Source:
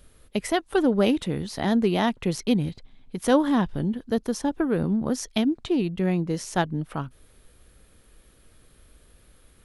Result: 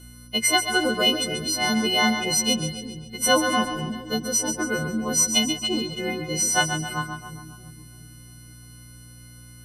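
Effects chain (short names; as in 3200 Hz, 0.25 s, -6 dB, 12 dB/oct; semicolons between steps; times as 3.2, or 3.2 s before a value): frequency quantiser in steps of 3 st; low shelf 290 Hz -10.5 dB; hum 60 Hz, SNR 18 dB; ripple EQ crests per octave 1.9, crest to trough 17 dB; split-band echo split 380 Hz, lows 0.342 s, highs 0.136 s, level -8 dB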